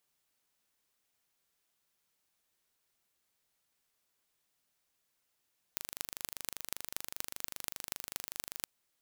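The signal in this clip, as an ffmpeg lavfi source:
ffmpeg -f lavfi -i "aevalsrc='0.447*eq(mod(n,1757),0)*(0.5+0.5*eq(mod(n,10542),0))':duration=2.88:sample_rate=44100" out.wav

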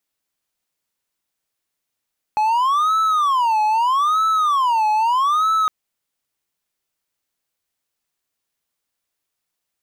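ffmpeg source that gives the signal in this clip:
ffmpeg -f lavfi -i "aevalsrc='0.237*(1-4*abs(mod((1081*t-229/(2*PI*0.79)*sin(2*PI*0.79*t))+0.25,1)-0.5))':duration=3.31:sample_rate=44100" out.wav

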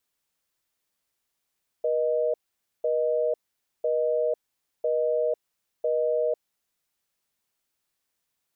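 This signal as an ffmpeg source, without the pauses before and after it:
ffmpeg -f lavfi -i "aevalsrc='0.0596*(sin(2*PI*480*t)+sin(2*PI*620*t))*clip(min(mod(t,1),0.5-mod(t,1))/0.005,0,1)':duration=4.57:sample_rate=44100" out.wav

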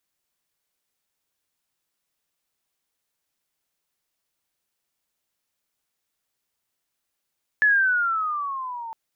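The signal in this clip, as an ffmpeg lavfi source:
ffmpeg -f lavfi -i "aevalsrc='pow(10,(-14-18*t/1.31)/20)*sin(2*PI*1730*1.31/(-11.5*log(2)/12)*(exp(-11.5*log(2)/12*t/1.31)-1))':duration=1.31:sample_rate=44100" out.wav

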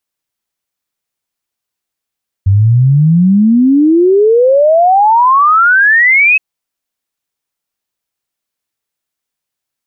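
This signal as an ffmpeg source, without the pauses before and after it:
ffmpeg -f lavfi -i "aevalsrc='0.596*clip(min(t,3.92-t)/0.01,0,1)*sin(2*PI*94*3.92/log(2600/94)*(exp(log(2600/94)*t/3.92)-1))':duration=3.92:sample_rate=44100" out.wav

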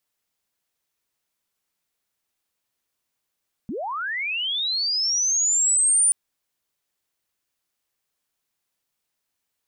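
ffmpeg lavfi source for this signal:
ffmpeg -f lavfi -i "aevalsrc='pow(10,(-27+12.5*t/2.43)/20)*sin(2*PI*(180*t+9220*t*t/(2*2.43)))':duration=2.43:sample_rate=44100" out.wav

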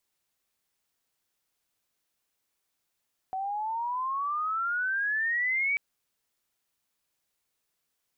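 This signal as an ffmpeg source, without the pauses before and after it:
ffmpeg -f lavfi -i "aevalsrc='pow(10,(-29.5+5.5*t/2.44)/20)*sin(2*PI*750*2.44/log(2300/750)*(exp(log(2300/750)*t/2.44)-1))':duration=2.44:sample_rate=44100" out.wav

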